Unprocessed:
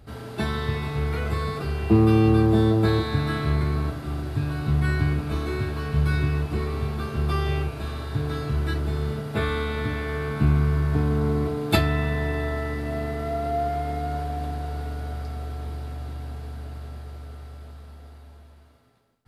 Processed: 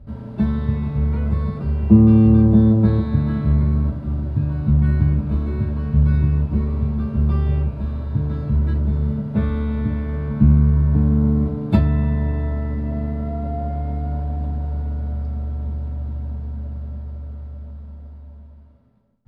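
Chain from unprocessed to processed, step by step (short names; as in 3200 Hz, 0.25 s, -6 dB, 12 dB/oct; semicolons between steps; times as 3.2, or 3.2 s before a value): RIAA curve playback; small resonant body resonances 210/570/940 Hz, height 13 dB, ringing for 65 ms; gain -8 dB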